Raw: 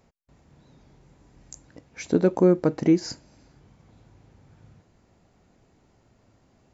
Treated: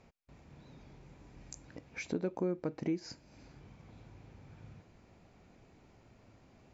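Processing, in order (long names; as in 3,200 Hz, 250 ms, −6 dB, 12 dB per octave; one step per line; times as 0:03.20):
low-pass filter 6,200 Hz 12 dB per octave
parametric band 2,400 Hz +6.5 dB 0.22 octaves
downward compressor 2 to 1, threshold −44 dBFS, peak gain reduction 16.5 dB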